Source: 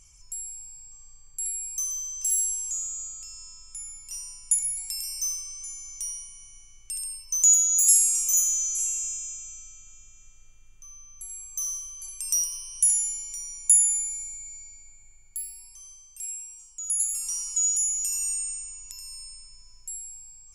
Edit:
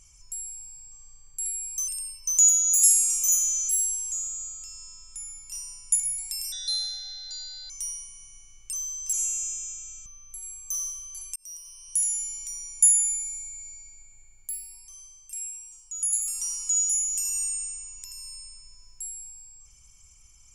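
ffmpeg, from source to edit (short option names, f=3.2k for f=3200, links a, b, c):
-filter_complex "[0:a]asplit=9[a][b][c][d][e][f][g][h][i];[a]atrim=end=1.882[j];[b]atrim=start=6.928:end=8.742[k];[c]atrim=start=2.278:end=5.114[l];[d]atrim=start=5.11:end=5.9,asetpts=PTS-STARTPTS,asetrate=29547,aresample=44100[m];[e]atrim=start=5.896:end=6.932[n];[f]atrim=start=1.878:end=2.282[o];[g]atrim=start=8.738:end=9.672[p];[h]atrim=start=10.928:end=12.23,asetpts=PTS-STARTPTS,afade=t=out:st=1.298:d=0.004:c=hsin[q];[i]atrim=start=12.23,asetpts=PTS-STARTPTS,afade=t=in:d=1.01[r];[j][k]acrossfade=d=0.004:c1=hsin:c2=hsin[s];[s][l]acrossfade=d=0.004:c1=hsin:c2=hsin[t];[t][m]acrossfade=d=0.004:c1=hsin:c2=hsin[u];[u][n]acrossfade=d=0.004:c1=hsin:c2=hsin[v];[v][o]acrossfade=d=0.004:c1=hsin:c2=hsin[w];[w][p]acrossfade=d=0.004:c1=hsin:c2=hsin[x];[q][r]concat=n=2:v=0:a=1[y];[x][y]acrossfade=d=0.004:c1=hsin:c2=hsin"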